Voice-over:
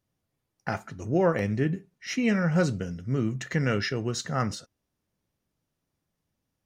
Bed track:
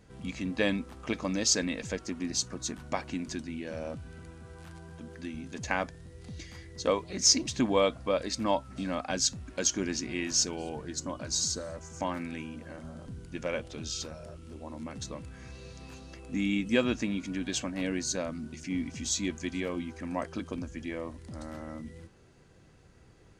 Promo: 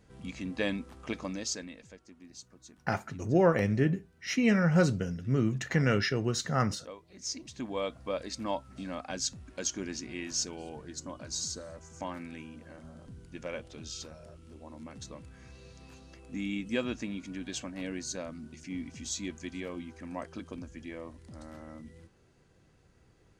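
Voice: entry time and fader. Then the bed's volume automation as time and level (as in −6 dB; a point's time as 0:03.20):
2.20 s, −0.5 dB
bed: 0:01.20 −3.5 dB
0:01.98 −18.5 dB
0:06.98 −18.5 dB
0:08.07 −5.5 dB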